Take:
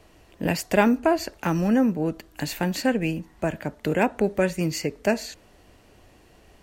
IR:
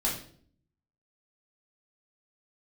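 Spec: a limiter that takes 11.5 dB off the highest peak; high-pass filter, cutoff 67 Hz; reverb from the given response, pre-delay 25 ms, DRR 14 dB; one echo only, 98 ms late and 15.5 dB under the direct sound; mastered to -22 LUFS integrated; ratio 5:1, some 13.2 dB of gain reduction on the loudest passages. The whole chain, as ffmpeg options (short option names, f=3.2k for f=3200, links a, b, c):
-filter_complex "[0:a]highpass=67,acompressor=threshold=-30dB:ratio=5,alimiter=level_in=4dB:limit=-24dB:level=0:latency=1,volume=-4dB,aecho=1:1:98:0.168,asplit=2[a][b];[1:a]atrim=start_sample=2205,adelay=25[c];[b][c]afir=irnorm=-1:irlink=0,volume=-21.5dB[d];[a][d]amix=inputs=2:normalize=0,volume=16dB"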